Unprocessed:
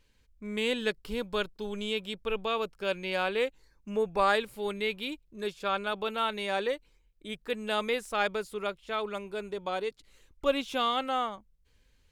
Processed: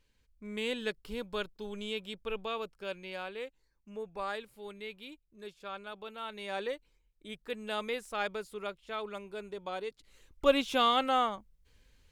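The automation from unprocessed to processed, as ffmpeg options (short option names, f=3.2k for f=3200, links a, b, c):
-af "volume=9dB,afade=t=out:st=2.33:d=1.02:silence=0.446684,afade=t=in:st=6.21:d=0.41:silence=0.473151,afade=t=in:st=9.88:d=0.57:silence=0.421697"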